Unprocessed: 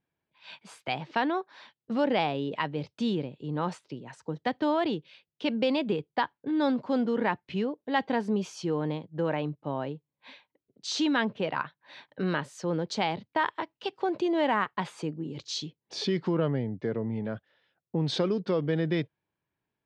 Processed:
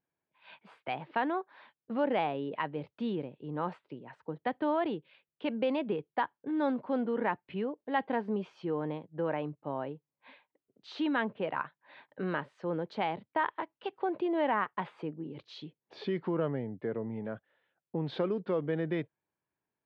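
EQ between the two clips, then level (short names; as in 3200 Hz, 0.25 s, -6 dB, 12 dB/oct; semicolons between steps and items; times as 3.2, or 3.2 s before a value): air absorption 480 m; low shelf 220 Hz -10.5 dB; 0.0 dB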